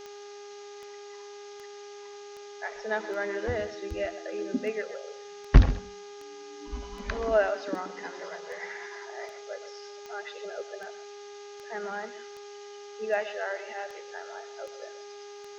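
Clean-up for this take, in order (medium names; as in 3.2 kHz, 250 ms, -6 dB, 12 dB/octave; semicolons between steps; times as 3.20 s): de-click; de-hum 408.4 Hz, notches 19; noise print and reduce 30 dB; inverse comb 129 ms -14 dB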